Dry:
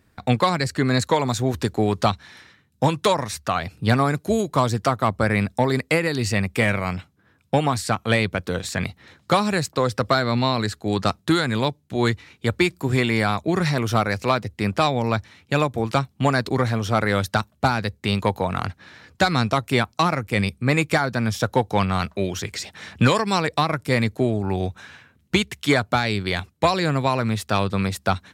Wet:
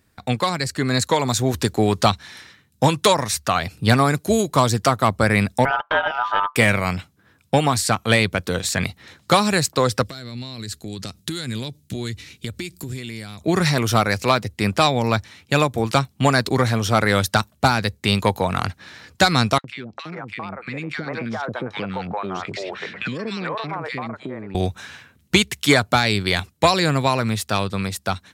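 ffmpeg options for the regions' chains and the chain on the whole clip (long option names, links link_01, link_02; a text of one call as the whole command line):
ffmpeg -i in.wav -filter_complex "[0:a]asettb=1/sr,asplit=3[link_01][link_02][link_03];[link_01]atrim=end=5.654[link_04];[link_02]atrim=start=5.65:end=6.56,asetpts=PTS-STARTPTS,afade=type=in:duration=0.004:curve=qsin,afade=type=out:start_time=0.906:duration=0.004:curve=qsin,aeval=exprs='val(0)*sin(2*PI*1100*n/s)':channel_layout=same,lowpass=frequency=2500:width=0.5412,lowpass=frequency=2500:width=1.3066,aecho=1:1:6.8:0.33,atrim=end_sample=40131[link_05];[link_03]atrim=start=6.556[link_06];[link_04][link_05]acrossfade=duration=0.004:curve1=hsin:curve2=qsin[link_07];[link_07][link_06]acrossfade=duration=0.004:curve1=qsin:curve2=hsin,asettb=1/sr,asplit=3[link_08][link_09][link_10];[link_08]atrim=end=10.034[link_11];[link_09]atrim=start=10.03:end=13.41,asetpts=PTS-STARTPTS,afade=type=in:duration=0.004:curve=qsin,afade=type=out:start_time=3.376:duration=0.004:curve=qsin,acompressor=threshold=-29dB:ratio=6:attack=3.2:release=140:knee=1:detection=peak,equalizer=frequency=950:width=0.65:gain=-13.5[link_12];[link_10]atrim=start=13.406[link_13];[link_11][link_12]acrossfade=duration=0.004:curve1=hsin:curve2=qsin[link_14];[link_14][link_13]acrossfade=duration=0.004:curve1=qsin:curve2=hsin,asettb=1/sr,asplit=3[link_15][link_16][link_17];[link_15]atrim=end=19.584[link_18];[link_16]atrim=start=19.58:end=24.55,asetpts=PTS-STARTPTS,afade=type=in:duration=0.004:curve=qsin,afade=type=out:start_time=4.966:duration=0.004:curve=qsin,acrossover=split=470|1600[link_19][link_20][link_21];[link_19]adelay=60[link_22];[link_20]adelay=400[link_23];[link_22][link_23][link_21]amix=inputs=3:normalize=0,atrim=end_sample=219177,acompressor=threshold=-31dB:ratio=6:attack=3.2:release=140:knee=1:detection=peak,highpass=160,lowpass=2500[link_24];[link_17]atrim=start=24.546[link_25];[link_18][link_24]acrossfade=duration=0.004:curve1=hsin:curve2=qsin[link_26];[link_26][link_25]acrossfade=duration=0.004:curve1=qsin:curve2=hsin,dynaudnorm=framelen=130:gausssize=17:maxgain=11.5dB,highshelf=frequency=3500:gain=7.5,volume=-3dB" out.wav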